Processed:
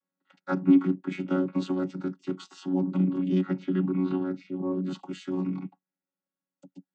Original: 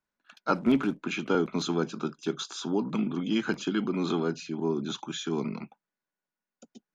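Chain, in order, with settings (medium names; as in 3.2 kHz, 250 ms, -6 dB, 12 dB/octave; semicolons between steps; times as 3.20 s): vocoder on a held chord bare fifth, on F#3; 3.41–4.84 s: distance through air 170 m; trim +3 dB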